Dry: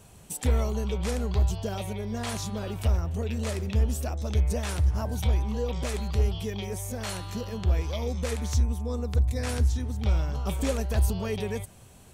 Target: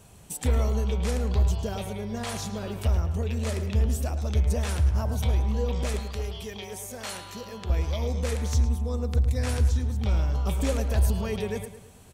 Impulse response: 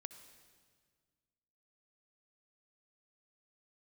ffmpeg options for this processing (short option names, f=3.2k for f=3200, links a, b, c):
-filter_complex "[0:a]asettb=1/sr,asplit=3[a][b][c];[a]atrim=end=5.994[d];[b]atrim=start=5.99:end=7.7,asetpts=PTS-STARTPTS,afade=t=in:d=0.004:c=qsin,afade=t=out:st=1.706:d=0.004:c=qsin,lowshelf=f=310:g=-11[e];[c]atrim=start=7.696[f];[d][e]acrossfade=d=0.004:c1=hsin:c2=qsin[g];[g][f]acrossfade=d=0.004:c1=qsin:c2=hsin,asplit=2[h][i];[i]adelay=108,lowpass=f=3.9k:p=1,volume=-10dB,asplit=2[j][k];[k]adelay=108,lowpass=f=3.9k:p=1,volume=0.46,asplit=2[l][m];[m]adelay=108,lowpass=f=3.9k:p=1,volume=0.46,asplit=2[n][o];[o]adelay=108,lowpass=f=3.9k:p=1,volume=0.46,asplit=2[p][q];[q]adelay=108,lowpass=f=3.9k:p=1,volume=0.46[r];[h][j][l][n][p][r]amix=inputs=6:normalize=0"